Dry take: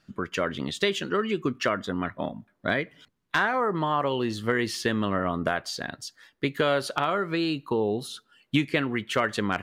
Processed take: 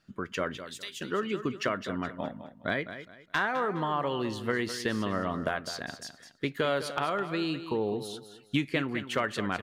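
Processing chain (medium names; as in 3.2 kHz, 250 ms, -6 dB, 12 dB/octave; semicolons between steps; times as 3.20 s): 0.57–1.01 s: differentiator; on a send: feedback delay 207 ms, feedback 29%, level -11.5 dB; on the sum: trim -4.5 dB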